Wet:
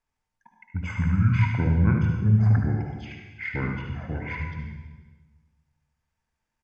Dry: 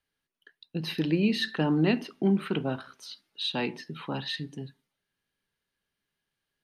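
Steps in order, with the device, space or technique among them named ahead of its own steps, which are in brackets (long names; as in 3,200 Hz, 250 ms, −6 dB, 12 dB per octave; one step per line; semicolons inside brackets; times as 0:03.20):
monster voice (pitch shifter −10.5 semitones; low-shelf EQ 100 Hz +6.5 dB; single-tap delay 75 ms −7.5 dB; convolution reverb RT60 1.3 s, pre-delay 52 ms, DRR 3 dB)
low-shelf EQ 63 Hz +5 dB
level −1.5 dB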